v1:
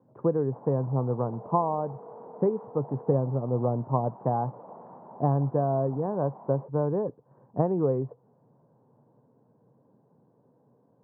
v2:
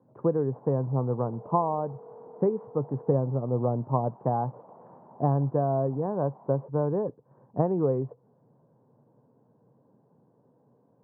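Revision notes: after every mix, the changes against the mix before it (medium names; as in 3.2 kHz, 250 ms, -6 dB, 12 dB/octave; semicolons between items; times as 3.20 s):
first sound -5.5 dB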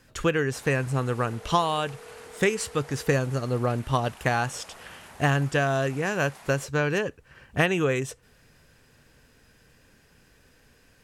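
master: remove Chebyshev band-pass 120–980 Hz, order 4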